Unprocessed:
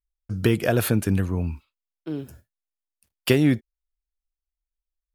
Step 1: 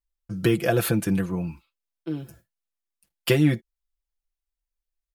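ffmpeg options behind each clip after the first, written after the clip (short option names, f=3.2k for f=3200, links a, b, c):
-af "aecho=1:1:5.9:0.77,volume=-2.5dB"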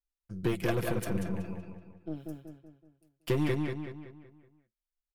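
-filter_complex "[0:a]acrossover=split=560[a][b];[a]aeval=exprs='val(0)*(1-0.7/2+0.7/2*cos(2*PI*2.4*n/s))':c=same[c];[b]aeval=exprs='val(0)*(1-0.7/2-0.7/2*cos(2*PI*2.4*n/s))':c=same[d];[c][d]amix=inputs=2:normalize=0,aeval=exprs='0.335*(cos(1*acos(clip(val(0)/0.335,-1,1)))-cos(1*PI/2))+0.0335*(cos(8*acos(clip(val(0)/0.335,-1,1)))-cos(8*PI/2))':c=same,asplit=2[e][f];[f]adelay=188,lowpass=f=4k:p=1,volume=-3dB,asplit=2[g][h];[h]adelay=188,lowpass=f=4k:p=1,volume=0.46,asplit=2[i][j];[j]adelay=188,lowpass=f=4k:p=1,volume=0.46,asplit=2[k][l];[l]adelay=188,lowpass=f=4k:p=1,volume=0.46,asplit=2[m][n];[n]adelay=188,lowpass=f=4k:p=1,volume=0.46,asplit=2[o][p];[p]adelay=188,lowpass=f=4k:p=1,volume=0.46[q];[e][g][i][k][m][o][q]amix=inputs=7:normalize=0,volume=-7.5dB"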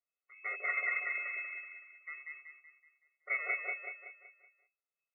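-af "asoftclip=type=hard:threshold=-28.5dB,lowpass=f=2.2k:t=q:w=0.5098,lowpass=f=2.2k:t=q:w=0.6013,lowpass=f=2.2k:t=q:w=0.9,lowpass=f=2.2k:t=q:w=2.563,afreqshift=-2600,afftfilt=real='re*eq(mod(floor(b*sr/1024/370),2),1)':imag='im*eq(mod(floor(b*sr/1024/370),2),1)':win_size=1024:overlap=0.75,volume=4.5dB"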